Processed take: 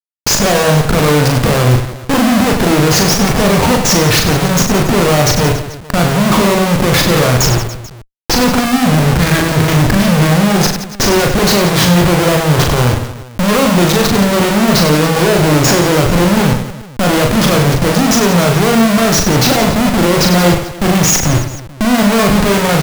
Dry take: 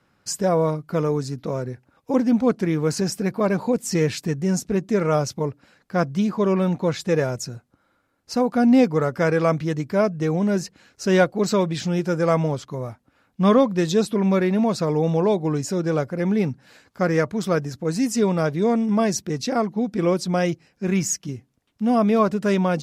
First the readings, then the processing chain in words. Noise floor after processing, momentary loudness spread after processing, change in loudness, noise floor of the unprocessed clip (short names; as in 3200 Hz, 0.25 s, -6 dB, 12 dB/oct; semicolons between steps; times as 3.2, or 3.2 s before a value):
-32 dBFS, 5 LU, +11.0 dB, -67 dBFS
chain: spectral delete 8.6–10.31, 330–1500 Hz; elliptic low-pass 6600 Hz; in parallel at -2.5 dB: vocal rider 0.5 s; on the sum: Schmitt trigger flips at -32 dBFS; on a send: reverse bouncing-ball echo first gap 40 ms, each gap 1.4×, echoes 5; on the sum: gain +6 dB